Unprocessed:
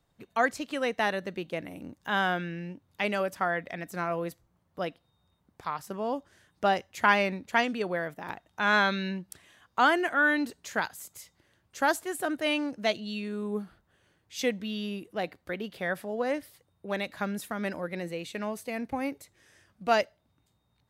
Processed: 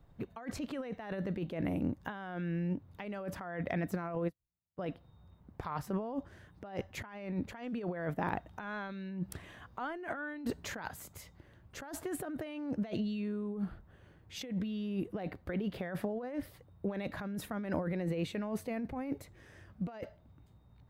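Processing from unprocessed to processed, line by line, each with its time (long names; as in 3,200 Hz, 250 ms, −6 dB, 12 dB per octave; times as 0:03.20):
0:04.15–0:04.86: expander for the loud parts 2.5 to 1, over −54 dBFS
0:08.30–0:10.87: compressor whose output falls as the input rises −28 dBFS
whole clip: low-shelf EQ 130 Hz +10.5 dB; compressor whose output falls as the input rises −37 dBFS, ratio −1; parametric band 8,500 Hz −14 dB 2.9 octaves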